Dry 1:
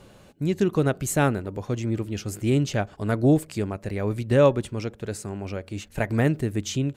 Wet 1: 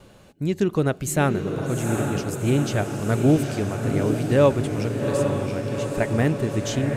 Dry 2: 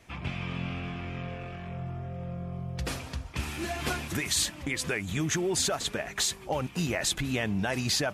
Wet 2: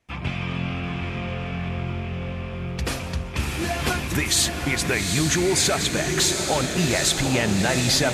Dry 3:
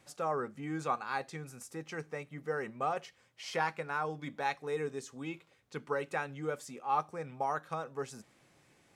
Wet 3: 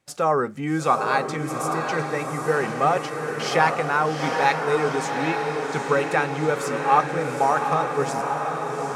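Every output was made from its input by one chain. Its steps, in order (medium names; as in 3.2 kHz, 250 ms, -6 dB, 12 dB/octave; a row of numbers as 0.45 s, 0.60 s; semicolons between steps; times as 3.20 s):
gate with hold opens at -47 dBFS; on a send: echo that smears into a reverb 799 ms, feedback 66%, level -5 dB; on the sum: normalise loudness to -23 LUFS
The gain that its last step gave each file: +0.5 dB, +6.5 dB, +13.0 dB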